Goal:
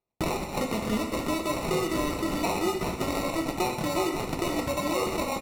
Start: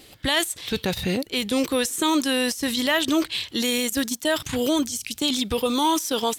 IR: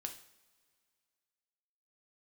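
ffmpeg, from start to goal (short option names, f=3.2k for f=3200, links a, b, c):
-filter_complex "[0:a]agate=range=-45dB:threshold=-40dB:ratio=16:detection=peak,acompressor=threshold=-31dB:ratio=6,acrusher=samples=32:mix=1:aa=0.000001,asetrate=52038,aresample=44100,aecho=1:1:123:0.224[a];[1:a]atrim=start_sample=2205,asetrate=29988,aresample=44100[b];[a][b]afir=irnorm=-1:irlink=0,volume=6dB"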